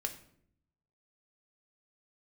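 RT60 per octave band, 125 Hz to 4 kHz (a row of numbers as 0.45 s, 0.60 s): 1.2 s, 0.95 s, 0.75 s, 0.55 s, 0.50 s, 0.45 s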